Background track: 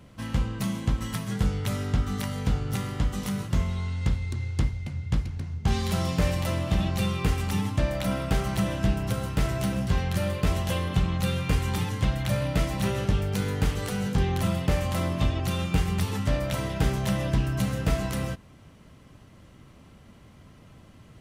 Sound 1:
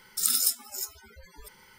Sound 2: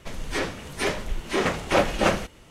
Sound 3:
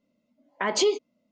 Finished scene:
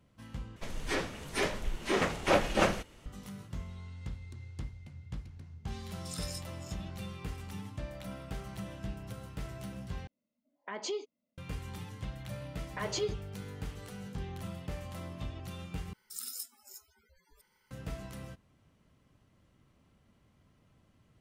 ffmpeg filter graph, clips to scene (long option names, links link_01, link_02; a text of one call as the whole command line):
ffmpeg -i bed.wav -i cue0.wav -i cue1.wav -i cue2.wav -filter_complex "[1:a]asplit=2[link_01][link_02];[3:a]asplit=2[link_03][link_04];[0:a]volume=-15.5dB[link_05];[link_01]lowpass=6200[link_06];[link_04]aecho=1:1:6.6:0.85[link_07];[link_02]bandreject=frequency=3600:width=25[link_08];[link_05]asplit=4[link_09][link_10][link_11][link_12];[link_09]atrim=end=0.564[link_13];[2:a]atrim=end=2.5,asetpts=PTS-STARTPTS,volume=-5.5dB[link_14];[link_10]atrim=start=3.056:end=10.074[link_15];[link_03]atrim=end=1.31,asetpts=PTS-STARTPTS,volume=-14dB[link_16];[link_11]atrim=start=11.376:end=15.934[link_17];[link_08]atrim=end=1.78,asetpts=PTS-STARTPTS,volume=-16.5dB[link_18];[link_12]atrim=start=17.706[link_19];[link_06]atrim=end=1.78,asetpts=PTS-STARTPTS,volume=-12dB,afade=type=in:duration=0.004:curve=hsin,afade=type=out:start_time=1.776:duration=0.004:curve=hsin,adelay=5880[link_20];[link_07]atrim=end=1.31,asetpts=PTS-STARTPTS,volume=-13dB,afade=type=in:duration=0.004:curve=hsin,afade=type=out:start_time=1.306:duration=0.004:curve=hsin,adelay=12160[link_21];[link_13][link_14]acrossfade=duration=0.004:curve1=hsin:curve2=hsin[link_22];[link_22][link_15]acrossfade=duration=0.004:curve1=hsin:curve2=hsin[link_23];[link_23][link_16]acrossfade=duration=0.004:curve1=hsin:curve2=hsin[link_24];[link_24][link_17]acrossfade=duration=0.004:curve1=hsin:curve2=hsin[link_25];[link_25][link_18]acrossfade=duration=0.004:curve1=hsin:curve2=hsin[link_26];[link_26][link_19]acrossfade=duration=0.004:curve1=hsin:curve2=hsin[link_27];[link_27][link_20][link_21]amix=inputs=3:normalize=0" out.wav